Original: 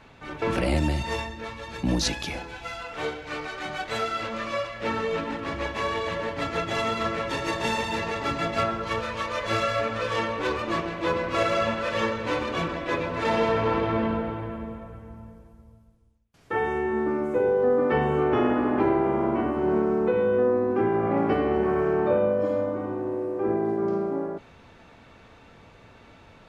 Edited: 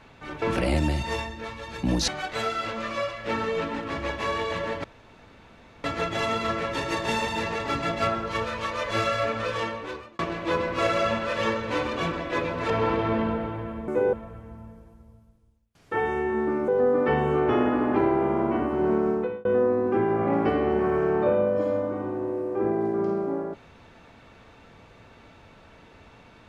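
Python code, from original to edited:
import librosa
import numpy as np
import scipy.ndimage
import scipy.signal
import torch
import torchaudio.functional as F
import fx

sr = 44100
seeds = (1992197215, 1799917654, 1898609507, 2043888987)

y = fx.edit(x, sr, fx.cut(start_s=2.08, length_s=1.56),
    fx.insert_room_tone(at_s=6.4, length_s=1.0),
    fx.fade_out_span(start_s=10.0, length_s=0.75),
    fx.cut(start_s=13.26, length_s=0.28),
    fx.move(start_s=17.27, length_s=0.25, to_s=14.72),
    fx.fade_out_span(start_s=19.94, length_s=0.35), tone=tone)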